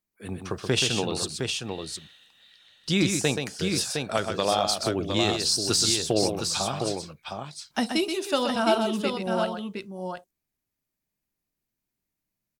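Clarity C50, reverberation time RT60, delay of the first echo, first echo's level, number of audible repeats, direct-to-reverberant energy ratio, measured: no reverb, no reverb, 127 ms, -6.5 dB, 2, no reverb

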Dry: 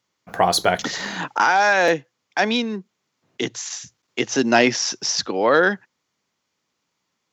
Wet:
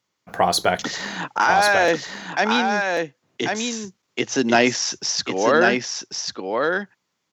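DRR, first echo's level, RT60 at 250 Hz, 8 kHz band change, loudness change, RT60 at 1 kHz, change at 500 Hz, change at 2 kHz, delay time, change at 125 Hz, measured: no reverb, -4.5 dB, no reverb, +0.5 dB, -1.0 dB, no reverb, +0.5 dB, +0.5 dB, 1092 ms, 0.0 dB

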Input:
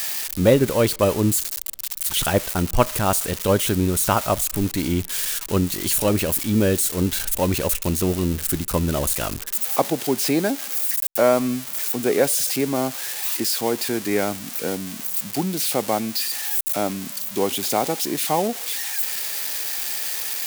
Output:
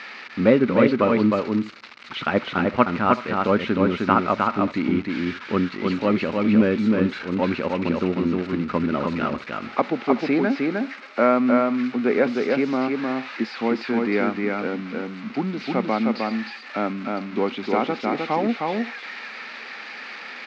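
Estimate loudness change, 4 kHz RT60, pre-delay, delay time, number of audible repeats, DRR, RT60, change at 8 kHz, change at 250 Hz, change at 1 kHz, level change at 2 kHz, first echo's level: -1.0 dB, no reverb, no reverb, 309 ms, 2, no reverb, no reverb, under -30 dB, +3.5 dB, +2.0 dB, +3.0 dB, -3.0 dB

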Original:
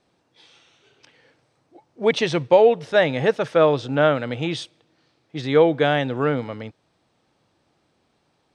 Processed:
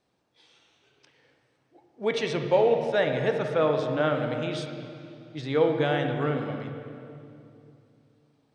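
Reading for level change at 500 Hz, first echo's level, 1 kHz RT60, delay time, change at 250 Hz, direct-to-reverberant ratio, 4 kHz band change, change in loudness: -6.0 dB, no echo, 2.5 s, no echo, -5.5 dB, 4.0 dB, -7.0 dB, -6.5 dB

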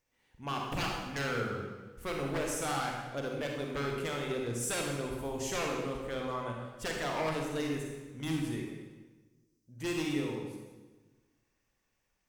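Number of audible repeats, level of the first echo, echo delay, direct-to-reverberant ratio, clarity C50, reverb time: no echo, no echo, no echo, 0.0 dB, 1.0 dB, 1.3 s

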